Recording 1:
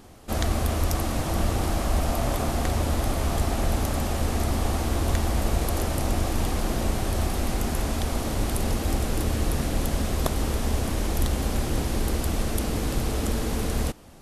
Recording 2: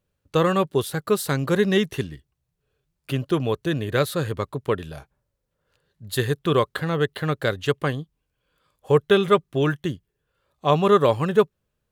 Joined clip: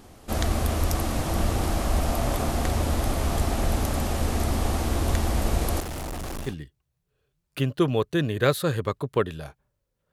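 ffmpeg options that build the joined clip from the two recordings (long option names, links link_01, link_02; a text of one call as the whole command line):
ffmpeg -i cue0.wav -i cue1.wav -filter_complex "[0:a]asettb=1/sr,asplit=3[link_01][link_02][link_03];[link_01]atrim=end=5.804[link_04];[link_02]atrim=start=5.8:end=6.56,asetpts=PTS-STARTPTS,afade=type=in:duration=0.004:curve=qsin,afade=type=out:start_time=0.756:duration=0.004:curve=qsin,volume=31dB,asoftclip=hard,volume=-31dB[link_05];[link_03]atrim=start=6.556[link_06];[link_04][link_05]acrossfade=duration=0.004:curve1=hsin:curve2=qsin[link_07];[link_07][link_06]acrossfade=duration=0.004:curve1=qsin:curve2=hsin,apad=whole_dur=10.12,atrim=end=10.12,atrim=end=6.56,asetpts=PTS-STARTPTS[link_08];[1:a]atrim=start=1.92:end=5.64,asetpts=PTS-STARTPTS[link_09];[link_08][link_09]acrossfade=duration=0.16:curve1=tri:curve2=tri" out.wav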